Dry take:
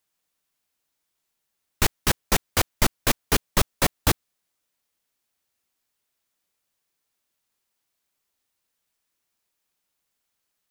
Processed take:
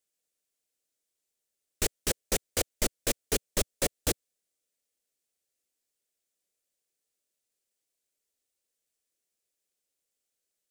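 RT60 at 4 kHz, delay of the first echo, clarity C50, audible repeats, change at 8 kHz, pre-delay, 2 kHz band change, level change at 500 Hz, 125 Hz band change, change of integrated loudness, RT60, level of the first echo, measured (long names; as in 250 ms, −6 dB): no reverb audible, no echo audible, no reverb audible, no echo audible, −3.0 dB, no reverb audible, −10.0 dB, −3.5 dB, −11.0 dB, −6.5 dB, no reverb audible, no echo audible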